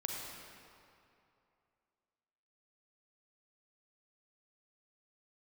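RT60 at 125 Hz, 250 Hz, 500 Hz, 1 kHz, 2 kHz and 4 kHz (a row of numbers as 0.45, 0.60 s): 2.6, 2.5, 2.7, 2.7, 2.2, 1.8 s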